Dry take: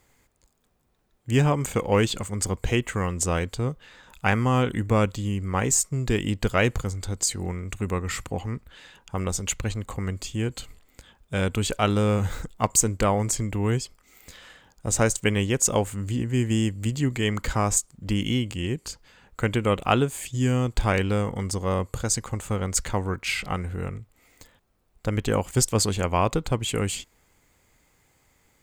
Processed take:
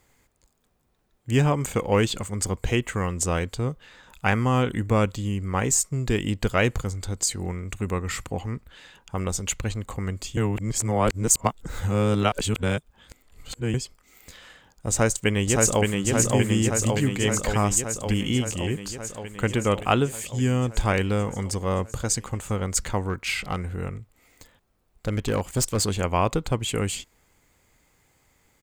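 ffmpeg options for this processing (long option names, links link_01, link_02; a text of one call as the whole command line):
ffmpeg -i in.wav -filter_complex "[0:a]asplit=2[link_01][link_02];[link_02]afade=type=in:start_time=14.9:duration=0.01,afade=type=out:start_time=16.03:duration=0.01,aecho=0:1:570|1140|1710|2280|2850|3420|3990|4560|5130|5700|6270|6840:0.794328|0.595746|0.44681|0.335107|0.25133|0.188498|0.141373|0.10603|0.0795225|0.0596419|0.0447314|0.0335486[link_03];[link_01][link_03]amix=inputs=2:normalize=0,asettb=1/sr,asplit=3[link_04][link_05][link_06];[link_04]atrim=end=23.094[link_07];[link_05]atrim=start=23.09:end=25.88,asetpts=PTS-STARTPTS,afade=type=in:duration=0.004:curve=qsin,afade=type=out:start_time=2.786:duration=0.004:curve=qsin,asoftclip=type=hard:threshold=-18.5dB[link_08];[link_06]atrim=start=25.876[link_09];[link_07][link_08]acrossfade=duration=0.004:curve1=hsin:curve2=qsin[link_10];[link_10][link_09]acrossfade=duration=0.004:curve1=qsin:curve2=hsin,asplit=3[link_11][link_12][link_13];[link_11]atrim=end=10.372[link_14];[link_12]atrim=start=10.368:end=13.742,asetpts=PTS-STARTPTS,areverse[link_15];[link_13]atrim=start=13.738[link_16];[link_14][link_15]acrossfade=duration=0.004:curve1=hsin:curve2=hsin[link_17];[link_17][link_16]acrossfade=duration=0.004:curve1=hsin:curve2=hsin" out.wav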